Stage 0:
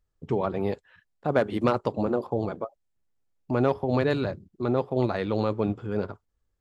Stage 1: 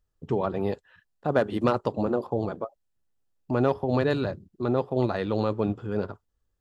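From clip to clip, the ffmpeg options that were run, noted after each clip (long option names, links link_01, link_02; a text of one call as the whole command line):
ffmpeg -i in.wav -af "bandreject=frequency=2200:width=8.6" out.wav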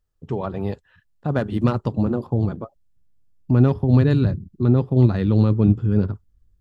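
ffmpeg -i in.wav -af "asubboost=boost=8.5:cutoff=220" out.wav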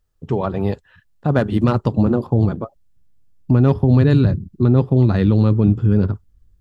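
ffmpeg -i in.wav -af "alimiter=level_in=10dB:limit=-1dB:release=50:level=0:latency=1,volume=-4.5dB" out.wav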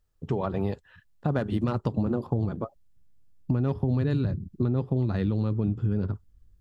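ffmpeg -i in.wav -af "acompressor=threshold=-20dB:ratio=4,volume=-3.5dB" out.wav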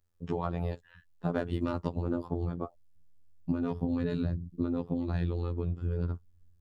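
ffmpeg -i in.wav -af "afftfilt=real='hypot(re,im)*cos(PI*b)':imag='0':win_size=2048:overlap=0.75" out.wav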